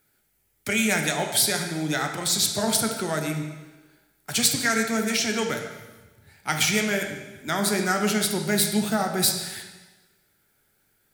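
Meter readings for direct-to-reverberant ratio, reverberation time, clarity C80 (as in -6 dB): 3.0 dB, 1.2 s, 7.5 dB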